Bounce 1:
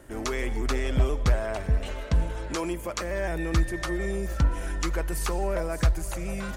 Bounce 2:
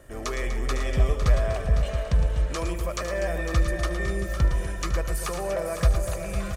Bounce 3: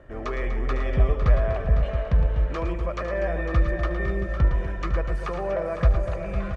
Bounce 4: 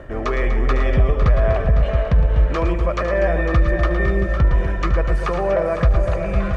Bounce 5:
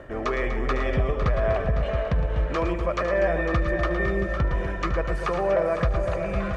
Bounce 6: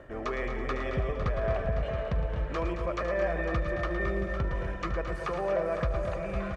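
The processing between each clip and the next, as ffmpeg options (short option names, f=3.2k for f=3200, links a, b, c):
-filter_complex "[0:a]aecho=1:1:1.7:0.43,asplit=2[a][b];[b]aecho=0:1:75|112|246|505|534|675:0.126|0.355|0.266|0.335|0.126|0.224[c];[a][c]amix=inputs=2:normalize=0,volume=-1.5dB"
-af "lowpass=2.2k,volume=1.5dB"
-af "alimiter=limit=-15.5dB:level=0:latency=1:release=68,areverse,acompressor=mode=upward:threshold=-27dB:ratio=2.5,areverse,volume=8dB"
-af "lowshelf=f=110:g=-8,volume=-3dB"
-af "aecho=1:1:220:0.316,volume=-6.5dB"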